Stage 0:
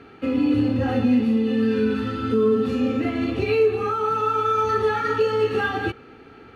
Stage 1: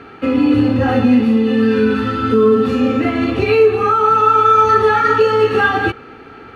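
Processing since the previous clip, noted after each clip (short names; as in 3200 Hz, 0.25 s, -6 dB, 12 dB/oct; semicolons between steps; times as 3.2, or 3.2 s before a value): bell 1200 Hz +5 dB 1.7 oct; gain +6.5 dB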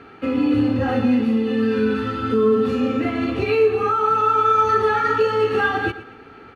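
feedback echo 0.115 s, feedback 38%, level -15.5 dB; gain -6 dB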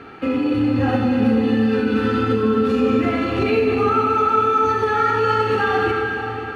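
limiter -17 dBFS, peak gain reduction 10 dB; on a send at -2 dB: reverb RT60 5.1 s, pre-delay 28 ms; on the sum: gain +4 dB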